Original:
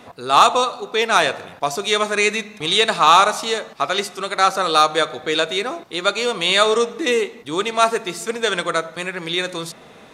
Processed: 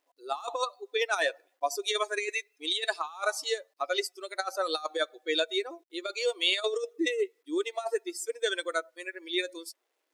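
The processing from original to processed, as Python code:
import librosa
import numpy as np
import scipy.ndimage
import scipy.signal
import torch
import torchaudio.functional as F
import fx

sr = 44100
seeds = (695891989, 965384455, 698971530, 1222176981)

y = fx.bin_expand(x, sr, power=2.0)
y = fx.notch(y, sr, hz=1600.0, q=14.0)
y = fx.over_compress(y, sr, threshold_db=-23.0, ratio=-0.5)
y = fx.quant_dither(y, sr, seeds[0], bits=12, dither='none')
y = fx.brickwall_highpass(y, sr, low_hz=290.0)
y = y * 10.0 ** (-4.5 / 20.0)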